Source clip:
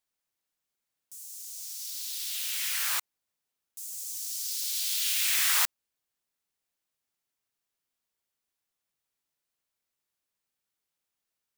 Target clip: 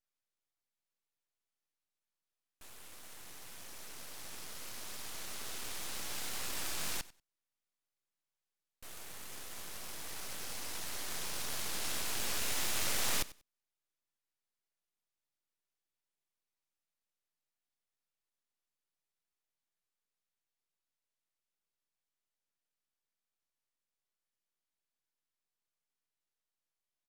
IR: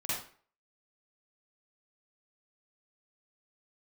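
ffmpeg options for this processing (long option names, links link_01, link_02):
-af "asetrate=18846,aresample=44100,aecho=1:1:94|188:0.112|0.0191,aeval=exprs='abs(val(0))':channel_layout=same,volume=-6.5dB"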